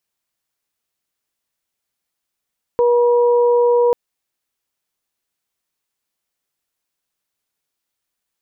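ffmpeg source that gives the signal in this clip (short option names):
-f lavfi -i "aevalsrc='0.282*sin(2*PI*481*t)+0.0891*sin(2*PI*962*t)':d=1.14:s=44100"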